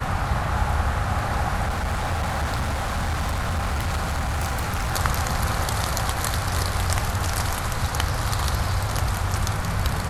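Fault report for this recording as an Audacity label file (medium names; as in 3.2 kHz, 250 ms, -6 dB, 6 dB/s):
1.650000	4.940000	clipped -21 dBFS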